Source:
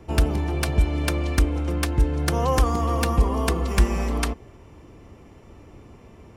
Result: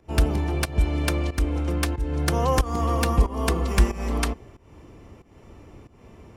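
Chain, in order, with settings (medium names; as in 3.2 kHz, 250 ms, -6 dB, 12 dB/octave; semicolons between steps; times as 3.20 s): volume shaper 92 bpm, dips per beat 1, -16 dB, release 282 ms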